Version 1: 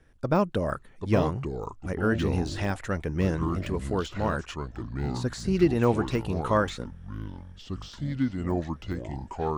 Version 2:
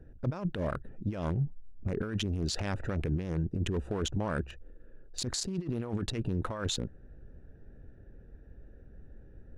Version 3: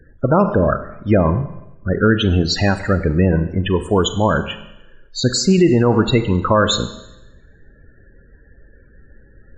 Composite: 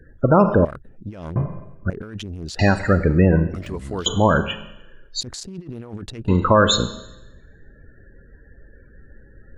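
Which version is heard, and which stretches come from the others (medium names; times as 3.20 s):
3
0.65–1.36 s: from 2
1.90–2.59 s: from 2
3.54–4.06 s: from 1
5.21–6.28 s: from 2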